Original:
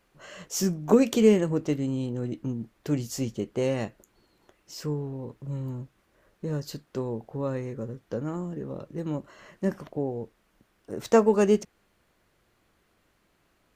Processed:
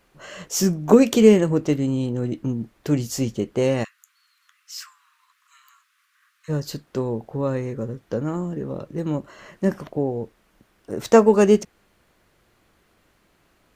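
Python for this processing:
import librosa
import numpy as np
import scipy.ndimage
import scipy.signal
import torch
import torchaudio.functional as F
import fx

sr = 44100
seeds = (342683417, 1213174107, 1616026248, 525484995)

y = fx.steep_highpass(x, sr, hz=1100.0, slope=96, at=(3.83, 6.48), fade=0.02)
y = y * 10.0 ** (6.0 / 20.0)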